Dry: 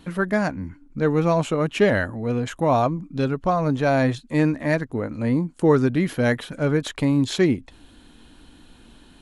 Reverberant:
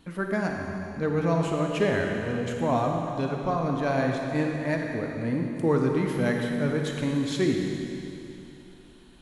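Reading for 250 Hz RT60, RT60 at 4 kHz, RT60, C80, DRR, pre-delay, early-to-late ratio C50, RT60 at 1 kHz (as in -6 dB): 3.0 s, 3.0 s, 3.0 s, 2.5 dB, 1.0 dB, 36 ms, 1.5 dB, 3.0 s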